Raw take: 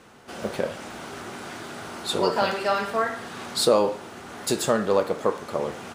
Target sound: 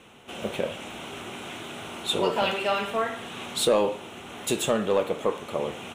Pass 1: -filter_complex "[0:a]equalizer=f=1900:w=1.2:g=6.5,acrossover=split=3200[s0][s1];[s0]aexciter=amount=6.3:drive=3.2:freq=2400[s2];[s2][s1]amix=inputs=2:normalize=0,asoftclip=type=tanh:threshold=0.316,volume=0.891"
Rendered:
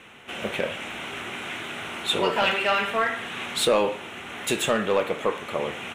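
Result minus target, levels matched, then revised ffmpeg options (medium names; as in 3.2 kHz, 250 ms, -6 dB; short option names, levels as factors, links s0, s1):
2 kHz band +5.0 dB
-filter_complex "[0:a]equalizer=f=1900:w=1.2:g=-3.5,acrossover=split=3200[s0][s1];[s0]aexciter=amount=6.3:drive=3.2:freq=2400[s2];[s2][s1]amix=inputs=2:normalize=0,asoftclip=type=tanh:threshold=0.316,volume=0.891"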